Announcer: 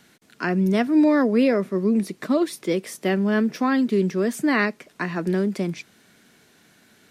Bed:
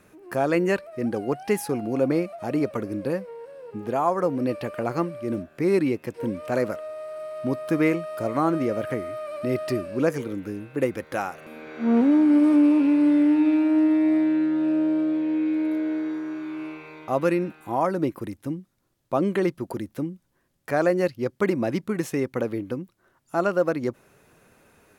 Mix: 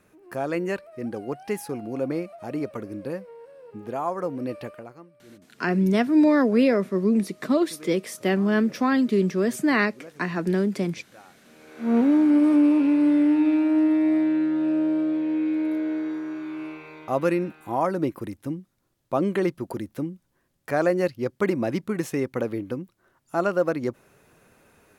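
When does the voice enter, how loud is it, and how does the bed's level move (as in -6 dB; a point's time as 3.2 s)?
5.20 s, -0.5 dB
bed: 4.67 s -5 dB
4.99 s -22 dB
11.23 s -22 dB
11.95 s -0.5 dB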